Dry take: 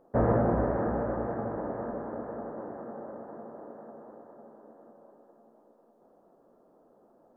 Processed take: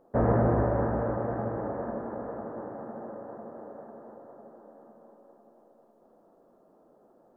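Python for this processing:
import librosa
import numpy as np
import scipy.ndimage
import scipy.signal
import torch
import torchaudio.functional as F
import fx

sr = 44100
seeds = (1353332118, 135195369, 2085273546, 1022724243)

y = fx.echo_heads(x, sr, ms=77, heads='first and third', feedback_pct=45, wet_db=-10)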